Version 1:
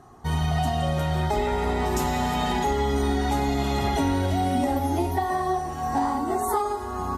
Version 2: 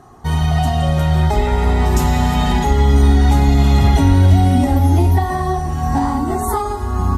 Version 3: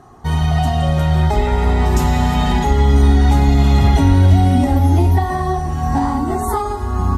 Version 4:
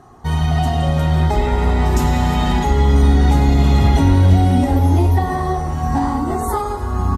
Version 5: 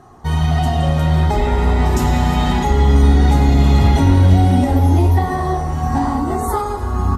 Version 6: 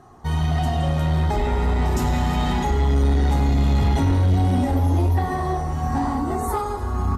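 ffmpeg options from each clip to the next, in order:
-af "asubboost=boost=4.5:cutoff=200,volume=6dB"
-af "highshelf=f=7.7k:g=-4.5"
-filter_complex "[0:a]asplit=7[a][b][c][d][e][f][g];[b]adelay=98,afreqshift=89,volume=-18dB[h];[c]adelay=196,afreqshift=178,volume=-21.7dB[i];[d]adelay=294,afreqshift=267,volume=-25.5dB[j];[e]adelay=392,afreqshift=356,volume=-29.2dB[k];[f]adelay=490,afreqshift=445,volume=-33dB[l];[g]adelay=588,afreqshift=534,volume=-36.7dB[m];[a][h][i][j][k][l][m]amix=inputs=7:normalize=0,volume=-1dB"
-af "flanger=delay=8.6:depth=6.9:regen=-75:speed=1.5:shape=sinusoidal,volume=5dB"
-af "asoftclip=type=tanh:threshold=-8.5dB,volume=-4dB"

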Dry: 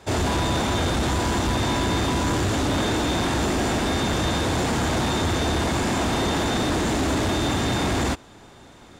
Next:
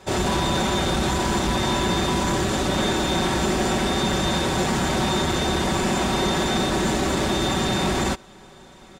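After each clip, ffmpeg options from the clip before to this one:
-af "aecho=1:1:5.3:0.56"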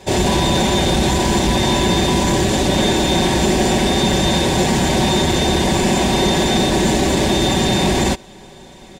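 -af "equalizer=f=1.3k:t=o:w=0.37:g=-14,volume=7dB"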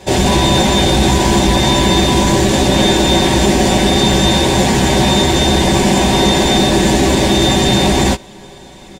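-filter_complex "[0:a]asplit=2[a][b];[b]adelay=15,volume=-6.5dB[c];[a][c]amix=inputs=2:normalize=0,volume=3dB"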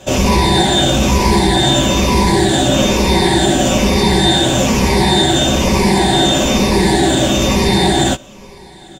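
-af "afftfilt=real='re*pow(10,10/40*sin(2*PI*(0.86*log(max(b,1)*sr/1024/100)/log(2)-(-1.1)*(pts-256)/sr)))':imag='im*pow(10,10/40*sin(2*PI*(0.86*log(max(b,1)*sr/1024/100)/log(2)-(-1.1)*(pts-256)/sr)))':win_size=1024:overlap=0.75,volume=-2dB"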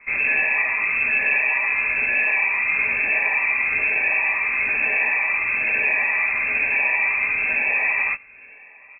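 -af "lowpass=f=2.3k:t=q:w=0.5098,lowpass=f=2.3k:t=q:w=0.6013,lowpass=f=2.3k:t=q:w=0.9,lowpass=f=2.3k:t=q:w=2.563,afreqshift=-2700,volume=-8dB"

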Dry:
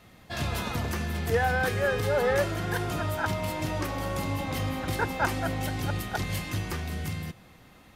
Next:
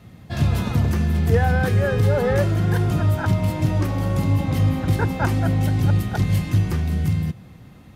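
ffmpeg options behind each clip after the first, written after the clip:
-af "equalizer=f=120:w=0.45:g=14.5"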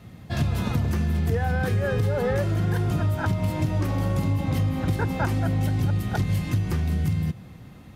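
-af "acompressor=threshold=-20dB:ratio=6"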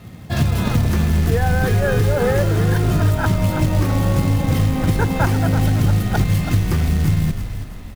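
-filter_complex "[0:a]acrusher=bits=5:mode=log:mix=0:aa=0.000001,asplit=6[a][b][c][d][e][f];[b]adelay=330,afreqshift=-56,volume=-9dB[g];[c]adelay=660,afreqshift=-112,volume=-16.7dB[h];[d]adelay=990,afreqshift=-168,volume=-24.5dB[i];[e]adelay=1320,afreqshift=-224,volume=-32.2dB[j];[f]adelay=1650,afreqshift=-280,volume=-40dB[k];[a][g][h][i][j][k]amix=inputs=6:normalize=0,volume=6.5dB"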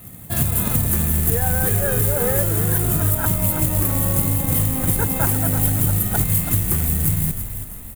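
-af "aexciter=amount=11.3:drive=5:freq=7.7k,volume=-4.5dB"

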